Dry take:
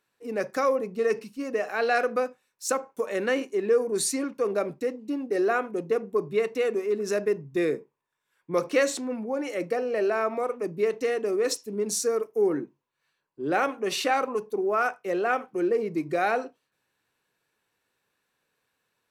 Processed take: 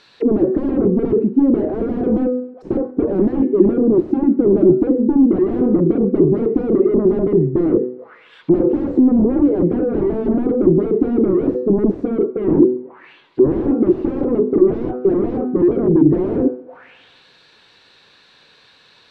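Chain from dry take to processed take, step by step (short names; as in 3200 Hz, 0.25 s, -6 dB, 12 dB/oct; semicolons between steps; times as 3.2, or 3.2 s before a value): de-hum 125.3 Hz, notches 36; spectral gain 3.21–4.68, 370–1300 Hz -8 dB; in parallel at 0 dB: limiter -22 dBFS, peak gain reduction 11 dB; on the sum: sine folder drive 18 dB, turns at -8.5 dBFS; on a send: thinning echo 0.137 s, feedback 58%, high-pass 170 Hz, level -23.5 dB; on the sum: envelope low-pass 340–4500 Hz down, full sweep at -18 dBFS; gain -5 dB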